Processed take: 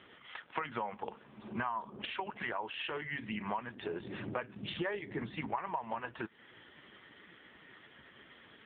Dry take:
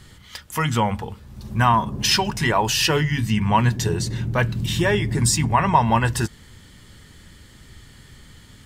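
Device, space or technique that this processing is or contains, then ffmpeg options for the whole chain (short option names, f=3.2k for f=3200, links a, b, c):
voicemail: -af "highpass=360,lowpass=3k,acompressor=threshold=-35dB:ratio=12,volume=2.5dB" -ar 8000 -c:a libopencore_amrnb -b:a 4750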